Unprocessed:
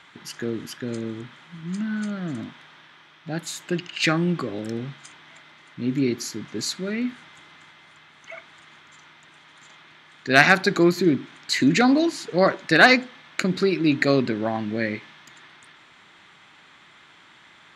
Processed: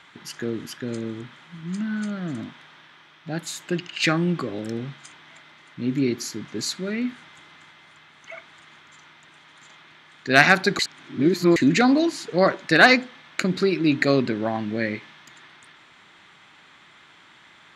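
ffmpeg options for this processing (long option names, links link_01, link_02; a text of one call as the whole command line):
ffmpeg -i in.wav -filter_complex "[0:a]asplit=3[link_01][link_02][link_03];[link_01]atrim=end=10.792[link_04];[link_02]atrim=start=10.788:end=11.562,asetpts=PTS-STARTPTS,areverse[link_05];[link_03]atrim=start=11.558[link_06];[link_04][link_05]acrossfade=duration=0.004:curve1=hsin:curve2=hsin[link_07];[link_07][link_06]acrossfade=duration=0.004:curve1=hsin:curve2=hsin" out.wav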